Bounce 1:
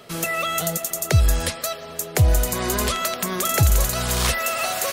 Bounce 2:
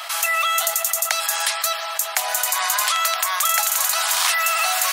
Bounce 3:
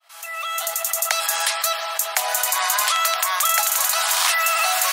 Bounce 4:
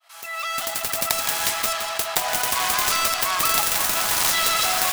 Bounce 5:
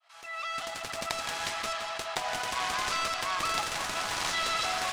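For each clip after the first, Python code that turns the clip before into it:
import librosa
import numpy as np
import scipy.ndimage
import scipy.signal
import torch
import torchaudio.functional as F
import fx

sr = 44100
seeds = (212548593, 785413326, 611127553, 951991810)

y1 = scipy.signal.sosfilt(scipy.signal.butter(8, 740.0, 'highpass', fs=sr, output='sos'), x)
y1 = fx.env_flatten(y1, sr, amount_pct=50)
y1 = y1 * librosa.db_to_amplitude(3.0)
y2 = fx.fade_in_head(y1, sr, length_s=1.1)
y2 = fx.low_shelf(y2, sr, hz=400.0, db=7.0)
y3 = fx.self_delay(y2, sr, depth_ms=0.5)
y3 = y3 + 10.0 ** (-8.0 / 20.0) * np.pad(y3, (int(166 * sr / 1000.0), 0))[:len(y3)]
y4 = fx.air_absorb(y3, sr, metres=83.0)
y4 = y4 * librosa.db_to_amplitude(-6.5)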